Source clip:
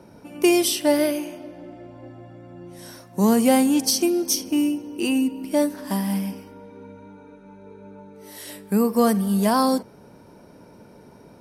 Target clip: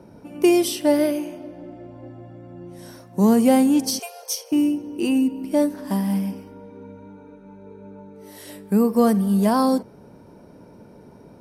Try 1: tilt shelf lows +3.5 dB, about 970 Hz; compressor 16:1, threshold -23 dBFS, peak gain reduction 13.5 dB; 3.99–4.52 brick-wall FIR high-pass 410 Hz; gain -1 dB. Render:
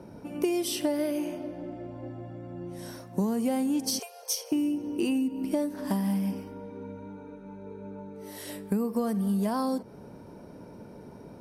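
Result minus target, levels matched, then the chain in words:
compressor: peak gain reduction +13.5 dB
tilt shelf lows +3.5 dB, about 970 Hz; 3.99–4.52 brick-wall FIR high-pass 410 Hz; gain -1 dB

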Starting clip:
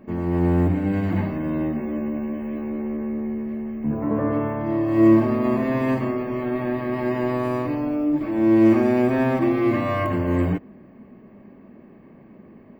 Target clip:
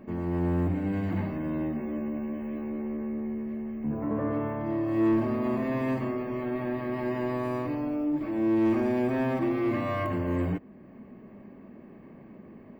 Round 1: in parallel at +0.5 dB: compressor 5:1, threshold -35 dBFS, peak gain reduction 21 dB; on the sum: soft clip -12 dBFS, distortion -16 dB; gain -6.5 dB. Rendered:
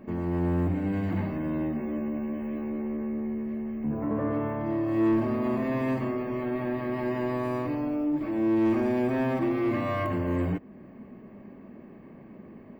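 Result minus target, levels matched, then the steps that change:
compressor: peak gain reduction -8 dB
change: compressor 5:1, threshold -45 dBFS, peak gain reduction 29 dB

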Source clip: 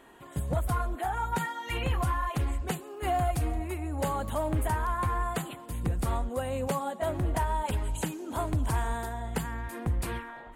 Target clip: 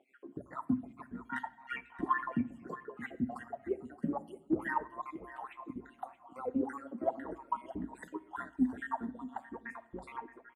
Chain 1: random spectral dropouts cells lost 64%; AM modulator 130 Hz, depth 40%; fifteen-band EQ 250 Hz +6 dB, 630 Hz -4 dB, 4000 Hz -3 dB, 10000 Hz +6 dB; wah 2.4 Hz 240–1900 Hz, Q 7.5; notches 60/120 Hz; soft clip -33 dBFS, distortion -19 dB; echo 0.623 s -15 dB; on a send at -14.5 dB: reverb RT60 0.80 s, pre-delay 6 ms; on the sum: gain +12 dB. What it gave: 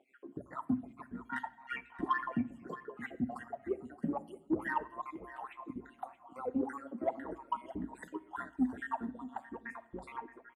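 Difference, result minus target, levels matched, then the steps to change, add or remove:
soft clip: distortion +14 dB
change: soft clip -24.5 dBFS, distortion -34 dB

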